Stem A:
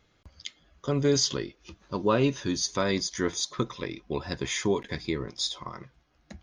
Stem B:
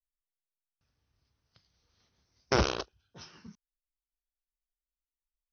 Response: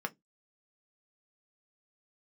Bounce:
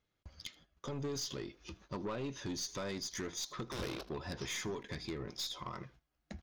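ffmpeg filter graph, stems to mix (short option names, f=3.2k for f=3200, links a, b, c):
-filter_complex "[0:a]agate=range=-16dB:threshold=-56dB:ratio=16:detection=peak,acompressor=threshold=-32dB:ratio=6,aeval=exprs='(tanh(44.7*val(0)+0.2)-tanh(0.2))/44.7':c=same,volume=-1dB,asplit=2[a][b];[b]volume=-23dB[c];[1:a]alimiter=limit=-22dB:level=0:latency=1:release=484,asoftclip=type=hard:threshold=-36.5dB,adelay=1200,volume=-2.5dB,asplit=2[d][e];[e]volume=-16.5dB[f];[c][f]amix=inputs=2:normalize=0,aecho=0:1:79:1[g];[a][d][g]amix=inputs=3:normalize=0"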